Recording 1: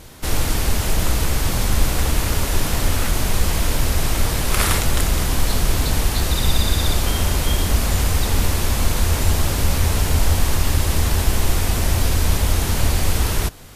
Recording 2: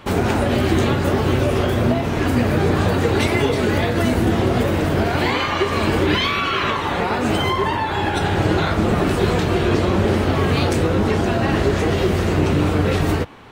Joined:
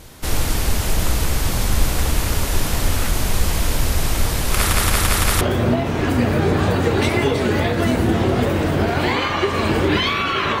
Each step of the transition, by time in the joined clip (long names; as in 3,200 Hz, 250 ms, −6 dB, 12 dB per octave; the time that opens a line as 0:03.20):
recording 1
0:04.56: stutter in place 0.17 s, 5 plays
0:05.41: continue with recording 2 from 0:01.59